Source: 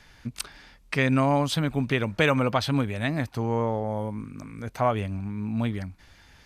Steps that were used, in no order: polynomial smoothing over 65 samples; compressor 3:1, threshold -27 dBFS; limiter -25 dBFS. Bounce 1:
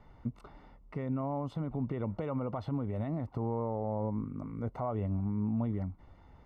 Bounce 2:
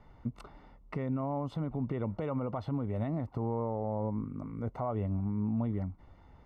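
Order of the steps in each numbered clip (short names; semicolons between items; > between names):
compressor > limiter > polynomial smoothing; compressor > polynomial smoothing > limiter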